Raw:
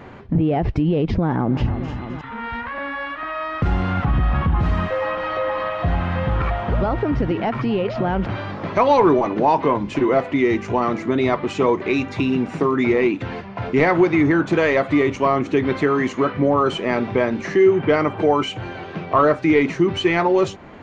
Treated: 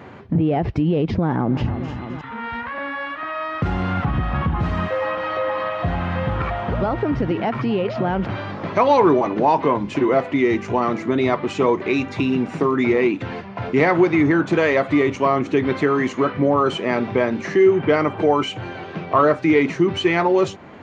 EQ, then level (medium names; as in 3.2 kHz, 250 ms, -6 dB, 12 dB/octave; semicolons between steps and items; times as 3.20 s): high-pass 78 Hz; 0.0 dB